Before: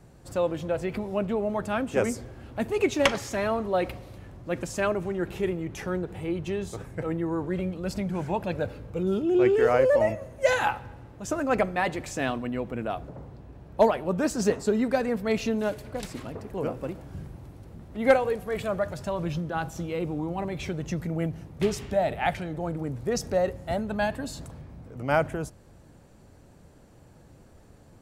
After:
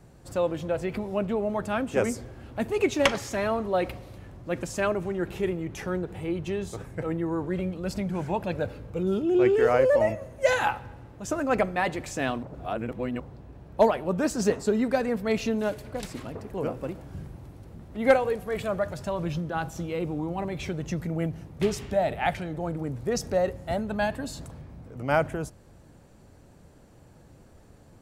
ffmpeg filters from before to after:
ffmpeg -i in.wav -filter_complex "[0:a]asplit=3[link_01][link_02][link_03];[link_01]atrim=end=12.432[link_04];[link_02]atrim=start=12.428:end=13.202,asetpts=PTS-STARTPTS,areverse[link_05];[link_03]atrim=start=13.198[link_06];[link_04][link_05]acrossfade=duration=0.004:curve1=hsin:curve2=hsin[link_07];[link_07][link_06]acrossfade=duration=0.004:curve1=hsin:curve2=hsin" out.wav

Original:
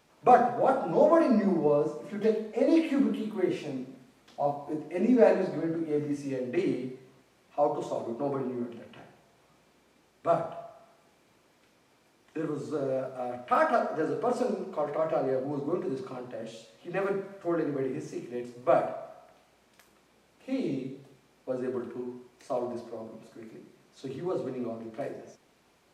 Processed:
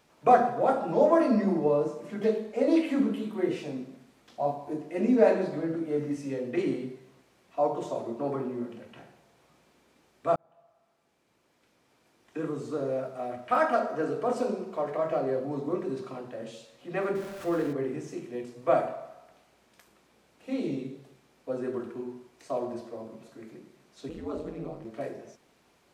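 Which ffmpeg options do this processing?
ffmpeg -i in.wav -filter_complex "[0:a]asettb=1/sr,asplit=3[link_01][link_02][link_03];[link_01]atrim=end=17.154[link_04];[link_02]atrim=start=17.15:end=17.73,asetpts=PTS-STARTPTS,afade=type=in:duration=0.004:curve=qsin,afade=type=out:start_time=0.576:duration=0.004:curve=qsin,aeval=exprs='val(0)+0.5*0.0112*sgn(val(0))':channel_layout=same[link_05];[link_03]atrim=start=17.726[link_06];[link_04][link_05]acrossfade=duration=0.004:curve1=hsin:curve2=qsin[link_07];[link_07][link_06]acrossfade=duration=0.004:curve1=qsin:curve2=hsin,asettb=1/sr,asplit=3[link_08][link_09][link_10];[link_08]atrim=end=24.094[link_11];[link_09]atrim=start=24.09:end=24.85,asetpts=PTS-STARTPTS,afade=type=in:duration=0.004:curve=qsin,afade=type=out:start_time=0.756:duration=0.004:curve=qsin,aeval=exprs='val(0)*sin(2*PI*84*n/s)':channel_layout=same[link_12];[link_10]atrim=start=24.846[link_13];[link_11][link_12]acrossfade=duration=0.004:curve1=hsin:curve2=qsin[link_14];[link_14][link_13]acrossfade=duration=0.004:curve1=qsin:curve2=hsin,asplit=2[link_15][link_16];[link_15]atrim=end=10.36,asetpts=PTS-STARTPTS,afade=type=out:start_time=10.356:duration=0.004:curve=hsin[link_17];[link_16]atrim=start=10.36,asetpts=PTS-STARTPTS,afade=type=in:duration=2.05[link_18];[link_17][link_18]concat=n=2:v=0:a=1" out.wav

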